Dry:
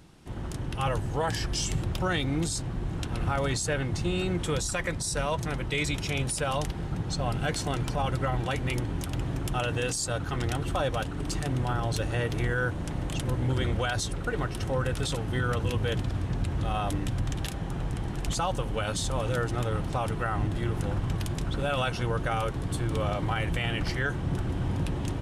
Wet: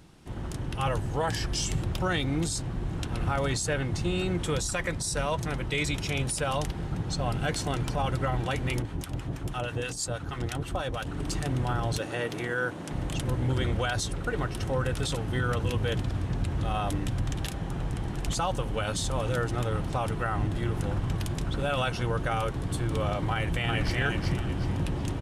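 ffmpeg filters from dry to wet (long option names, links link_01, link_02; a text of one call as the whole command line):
ffmpeg -i in.wav -filter_complex "[0:a]asettb=1/sr,asplit=3[link_01][link_02][link_03];[link_01]atrim=end=8.824[link_04];[link_02]atrim=start=8.82:end=11.07,asetpts=PTS-STARTPTS,afade=type=in:duration=0.004:curve=qsin,afade=type=out:start_time=2.246:duration=0.004:curve=qsin,acrossover=split=910[link_05][link_06];[link_05]aeval=exprs='val(0)*(1-0.7/2+0.7/2*cos(2*PI*6.2*n/s))':channel_layout=same[link_07];[link_06]aeval=exprs='val(0)*(1-0.7/2-0.7/2*cos(2*PI*6.2*n/s))':channel_layout=same[link_08];[link_07][link_08]amix=inputs=2:normalize=0[link_09];[link_03]atrim=start=11.066[link_10];[link_04][link_09]acrossfade=duration=0.004:curve1=hsin:curve2=qsin[link_11];[link_11][link_10]acrossfade=duration=0.004:curve1=qsin:curve2=hsin,asettb=1/sr,asplit=3[link_12][link_13][link_14];[link_12]atrim=end=11.984[link_15];[link_13]atrim=start=11.98:end=12.91,asetpts=PTS-STARTPTS,afade=type=in:duration=0.004:curve=qsin,afade=type=out:start_time=0.926:duration=0.004:curve=qsin,highpass=200[link_16];[link_14]atrim=start=12.906[link_17];[link_15][link_16]acrossfade=duration=0.004:curve1=hsin:curve2=qsin[link_18];[link_18][link_17]acrossfade=duration=0.004:curve1=qsin:curve2=hsin,asplit=2[link_19][link_20];[link_20]afade=type=in:start_time=23.31:duration=0.01,afade=type=out:start_time=23.96:duration=0.01,aecho=0:1:370|740|1110|1480|1850:0.668344|0.23392|0.0818721|0.0286552|0.0100293[link_21];[link_19][link_21]amix=inputs=2:normalize=0" out.wav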